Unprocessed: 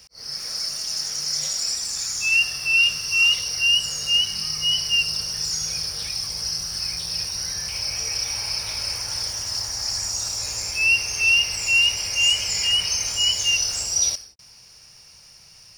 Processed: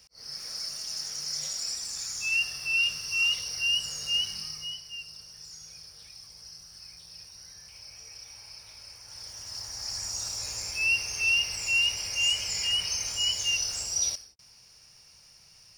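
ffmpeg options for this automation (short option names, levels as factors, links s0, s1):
-af "volume=1.78,afade=t=out:st=4.28:d=0.53:silence=0.251189,afade=t=in:st=9.01:d=1.19:silence=0.223872"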